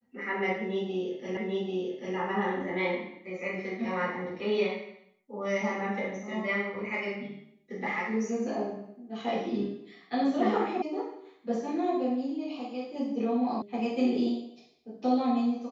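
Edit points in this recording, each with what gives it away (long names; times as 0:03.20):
0:01.37: the same again, the last 0.79 s
0:10.82: cut off before it has died away
0:13.62: cut off before it has died away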